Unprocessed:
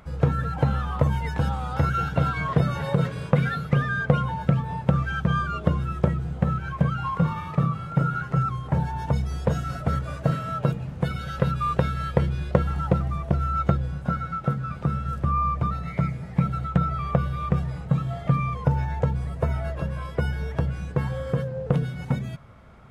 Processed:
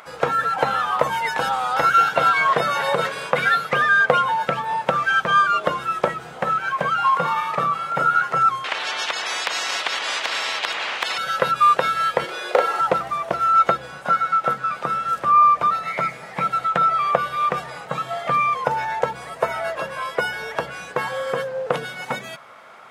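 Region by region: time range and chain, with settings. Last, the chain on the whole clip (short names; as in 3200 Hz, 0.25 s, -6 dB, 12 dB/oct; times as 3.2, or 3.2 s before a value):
8.64–11.18 LPF 3400 Hz + compressor 4:1, threshold -24 dBFS + spectral compressor 10:1
12.25–12.81 hard clip -12.5 dBFS + resonant high-pass 430 Hz, resonance Q 2.3 + doubler 36 ms -2.5 dB
whole clip: HPF 690 Hz 12 dB/oct; maximiser +13.5 dB; gain -1 dB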